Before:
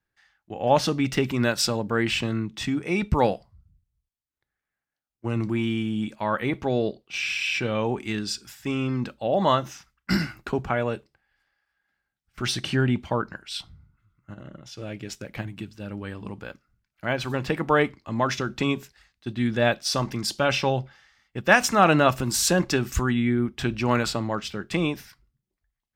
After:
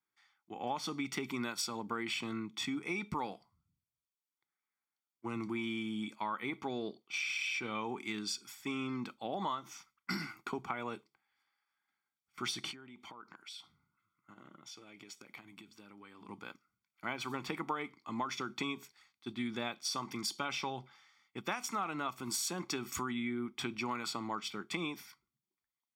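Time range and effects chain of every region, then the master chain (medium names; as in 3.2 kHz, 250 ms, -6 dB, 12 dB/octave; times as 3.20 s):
12.71–16.29 s: bass shelf 180 Hz -8 dB + compression 16:1, threshold -39 dBFS
whole clip: high-pass 290 Hz 12 dB/octave; comb 0.9 ms, depth 70%; compression 12:1, threshold -26 dBFS; trim -7 dB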